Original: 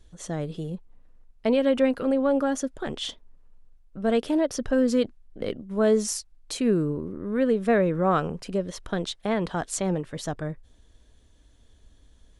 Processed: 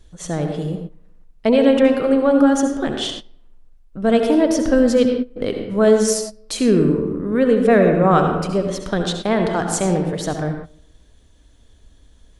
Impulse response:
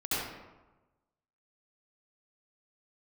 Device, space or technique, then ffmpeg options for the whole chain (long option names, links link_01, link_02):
keyed gated reverb: -filter_complex "[0:a]asplit=3[link_01][link_02][link_03];[1:a]atrim=start_sample=2205[link_04];[link_02][link_04]afir=irnorm=-1:irlink=0[link_05];[link_03]apad=whole_len=546499[link_06];[link_05][link_06]sidechaingate=range=-19dB:threshold=-43dB:ratio=16:detection=peak,volume=-10.5dB[link_07];[link_01][link_07]amix=inputs=2:normalize=0,volume=5.5dB"